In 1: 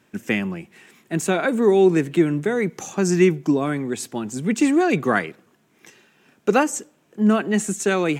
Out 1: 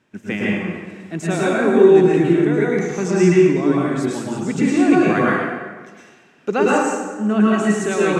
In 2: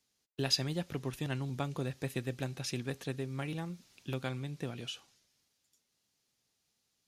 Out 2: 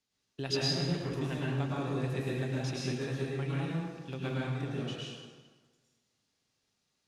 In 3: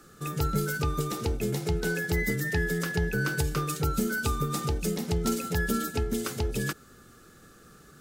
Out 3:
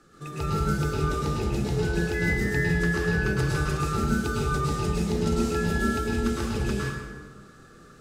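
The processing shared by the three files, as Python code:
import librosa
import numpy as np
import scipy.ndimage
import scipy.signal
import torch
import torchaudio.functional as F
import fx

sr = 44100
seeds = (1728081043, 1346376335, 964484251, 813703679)

y = fx.air_absorb(x, sr, metres=54.0)
y = fx.rev_plate(y, sr, seeds[0], rt60_s=1.4, hf_ratio=0.7, predelay_ms=95, drr_db=-6.0)
y = y * librosa.db_to_amplitude(-3.5)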